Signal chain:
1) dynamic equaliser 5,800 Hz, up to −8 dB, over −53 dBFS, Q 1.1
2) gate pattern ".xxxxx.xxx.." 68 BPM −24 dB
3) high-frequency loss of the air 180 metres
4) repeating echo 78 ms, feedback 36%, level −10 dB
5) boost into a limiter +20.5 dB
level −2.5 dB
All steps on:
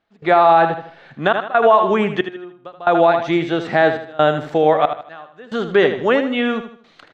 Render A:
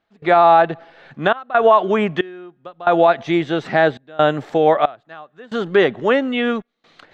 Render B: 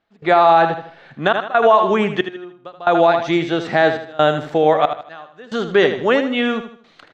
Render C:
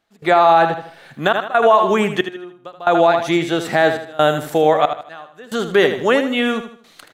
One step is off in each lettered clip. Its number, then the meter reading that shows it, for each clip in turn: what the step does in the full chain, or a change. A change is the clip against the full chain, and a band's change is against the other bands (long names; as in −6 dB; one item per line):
4, change in momentary loudness spread −3 LU
1, 4 kHz band +2.5 dB
3, 4 kHz band +3.5 dB